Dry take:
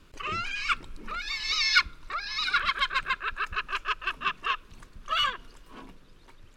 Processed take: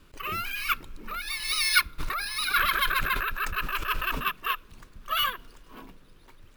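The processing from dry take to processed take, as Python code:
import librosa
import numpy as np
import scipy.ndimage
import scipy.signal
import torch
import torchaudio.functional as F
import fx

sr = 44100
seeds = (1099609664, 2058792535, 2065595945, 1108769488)

y = np.repeat(x[::3], 3)[:len(x)]
y = fx.sustainer(y, sr, db_per_s=39.0, at=(1.98, 4.22), fade=0.02)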